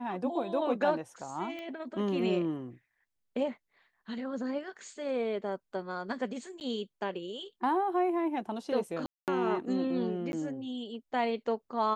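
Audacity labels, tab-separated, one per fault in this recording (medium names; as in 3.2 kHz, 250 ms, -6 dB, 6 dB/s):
1.590000	1.590000	pop -30 dBFS
6.600000	6.610000	dropout 9.7 ms
9.060000	9.280000	dropout 218 ms
10.320000	10.330000	dropout 11 ms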